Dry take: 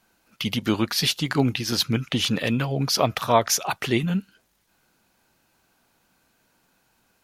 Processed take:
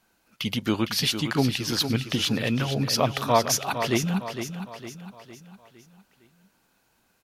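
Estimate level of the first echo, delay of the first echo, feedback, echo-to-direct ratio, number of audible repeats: −9.0 dB, 458 ms, 46%, −8.0 dB, 4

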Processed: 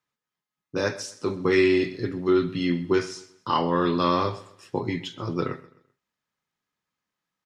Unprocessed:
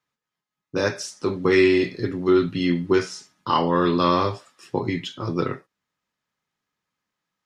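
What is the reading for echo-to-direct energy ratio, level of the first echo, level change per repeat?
−18.5 dB, −19.0 dB, −9.5 dB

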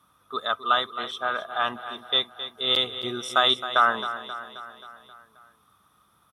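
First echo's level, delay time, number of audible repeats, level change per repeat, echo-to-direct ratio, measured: −12.0 dB, 266 ms, 5, −4.5 dB, −10.0 dB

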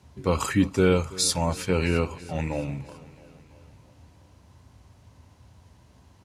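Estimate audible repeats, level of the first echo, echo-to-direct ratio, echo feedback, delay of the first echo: 4, −19.5 dB, −17.5 dB, 60%, 332 ms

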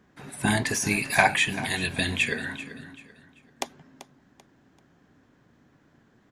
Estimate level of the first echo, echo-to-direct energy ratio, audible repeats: −15.0 dB, −14.5 dB, 3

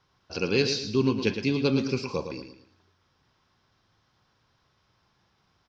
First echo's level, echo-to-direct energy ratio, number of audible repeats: −8.5 dB, −8.0 dB, 3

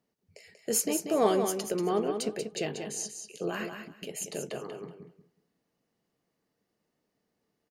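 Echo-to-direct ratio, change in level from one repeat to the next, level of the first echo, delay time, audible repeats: −7.0 dB, −14.5 dB, −7.0 dB, 187 ms, 2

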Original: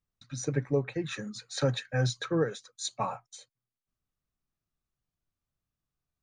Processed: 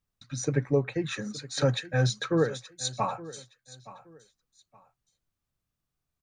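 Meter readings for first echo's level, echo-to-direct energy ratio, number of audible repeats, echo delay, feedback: −18.0 dB, −17.5 dB, 2, 870 ms, 27%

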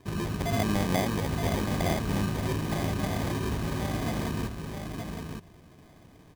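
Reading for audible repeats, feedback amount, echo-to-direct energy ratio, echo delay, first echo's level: 1, repeats not evenly spaced, −5.5 dB, 919 ms, −5.5 dB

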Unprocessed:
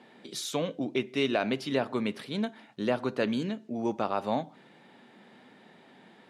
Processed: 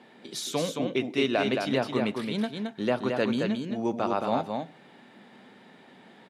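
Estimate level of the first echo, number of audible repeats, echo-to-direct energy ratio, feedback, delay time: −4.5 dB, 1, −4.5 dB, repeats not evenly spaced, 220 ms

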